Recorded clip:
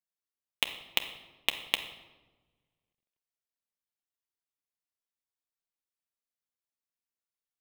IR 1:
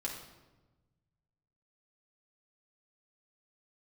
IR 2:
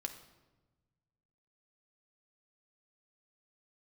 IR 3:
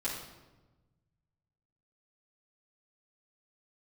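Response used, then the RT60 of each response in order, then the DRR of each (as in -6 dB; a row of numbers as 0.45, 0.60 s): 2; 1.2, 1.2, 1.1 s; -3.0, 5.0, -9.5 dB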